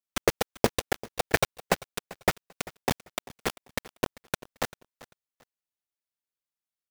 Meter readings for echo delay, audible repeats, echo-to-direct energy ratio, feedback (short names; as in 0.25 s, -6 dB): 0.392 s, 2, -19.0 dB, 25%